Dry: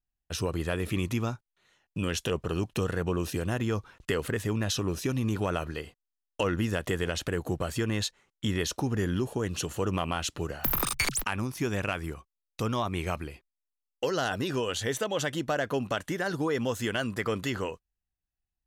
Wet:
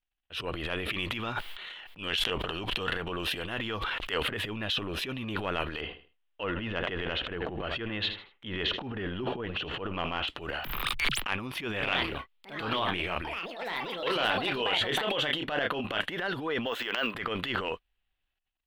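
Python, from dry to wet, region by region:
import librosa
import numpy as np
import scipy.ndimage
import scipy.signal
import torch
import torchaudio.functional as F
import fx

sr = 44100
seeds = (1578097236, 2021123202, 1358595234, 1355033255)

y = fx.chain(x, sr, fx.tilt_shelf(db=-3.0, hz=820.0),
    fx.notch(hz=2500.0, q=21.0),
    fx.sustainer(db_per_s=45.0), at=(0.93, 4.23))
y = fx.chain(y, sr, fx.air_absorb(metres=240.0),
    fx.echo_feedback(ms=78, feedback_pct=30, wet_db=-17.0),
    fx.sustainer(db_per_s=140.0), at=(5.81, 10.28))
y = fx.chain(y, sr, fx.echo_pitch(ms=123, semitones=5, count=2, db_per_echo=-6.0),
    fx.doubler(ms=28.0, db=-9.5), at=(11.69, 16.12))
y = fx.chain(y, sr, fx.highpass(hz=350.0, slope=12),
    fx.high_shelf(hz=7700.0, db=-4.5),
    fx.resample_bad(factor=2, down='filtered', up='hold'), at=(16.66, 17.15))
y = fx.high_shelf_res(y, sr, hz=4500.0, db=-13.0, q=3.0)
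y = fx.transient(y, sr, attack_db=-11, sustain_db=11)
y = fx.peak_eq(y, sr, hz=110.0, db=-11.0, octaves=2.5)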